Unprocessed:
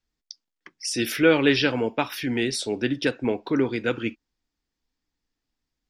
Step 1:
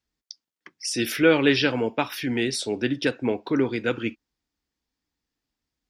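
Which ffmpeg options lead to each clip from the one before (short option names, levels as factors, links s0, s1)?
-af "highpass=42"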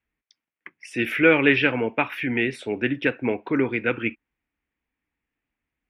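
-af "highshelf=f=3400:t=q:w=3:g=-13"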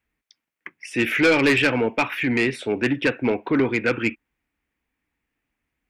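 -af "asoftclip=type=tanh:threshold=0.15,volume=1.68"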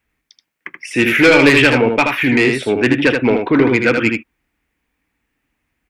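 -af "aecho=1:1:79:0.562,volume=2.24"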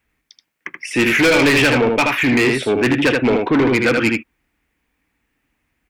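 -af "asoftclip=type=tanh:threshold=0.266,volume=1.19"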